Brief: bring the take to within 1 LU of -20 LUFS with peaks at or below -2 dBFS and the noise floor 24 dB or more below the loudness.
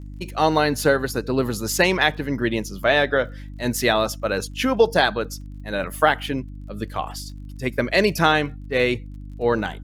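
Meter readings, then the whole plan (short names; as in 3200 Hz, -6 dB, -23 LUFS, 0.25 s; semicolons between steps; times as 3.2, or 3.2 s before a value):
ticks 27/s; hum 50 Hz; harmonics up to 300 Hz; hum level -33 dBFS; loudness -21.5 LUFS; peak -2.5 dBFS; loudness target -20.0 LUFS
-> de-click; de-hum 50 Hz, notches 6; gain +1.5 dB; limiter -2 dBFS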